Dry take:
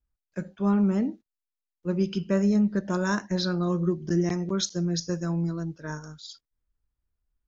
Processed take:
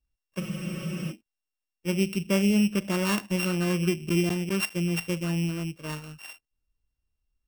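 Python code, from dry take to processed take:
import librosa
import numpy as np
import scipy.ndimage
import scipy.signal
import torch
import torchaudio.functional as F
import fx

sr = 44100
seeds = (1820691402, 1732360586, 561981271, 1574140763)

y = np.r_[np.sort(x[:len(x) // 16 * 16].reshape(-1, 16), axis=1).ravel(), x[len(x) // 16 * 16:]]
y = fx.spec_freeze(y, sr, seeds[0], at_s=0.42, hold_s=0.69)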